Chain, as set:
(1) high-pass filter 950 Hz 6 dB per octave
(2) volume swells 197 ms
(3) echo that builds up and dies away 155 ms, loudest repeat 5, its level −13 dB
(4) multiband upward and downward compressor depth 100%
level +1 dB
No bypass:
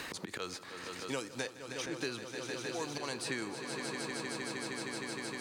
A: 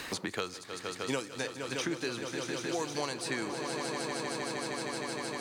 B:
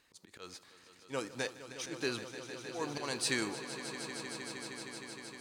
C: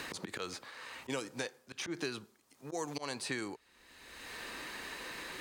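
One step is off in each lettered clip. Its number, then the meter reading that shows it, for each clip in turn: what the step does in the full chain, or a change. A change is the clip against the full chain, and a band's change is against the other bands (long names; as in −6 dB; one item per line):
2, 1 kHz band +2.0 dB
4, change in crest factor +6.5 dB
3, change in momentary loudness spread +10 LU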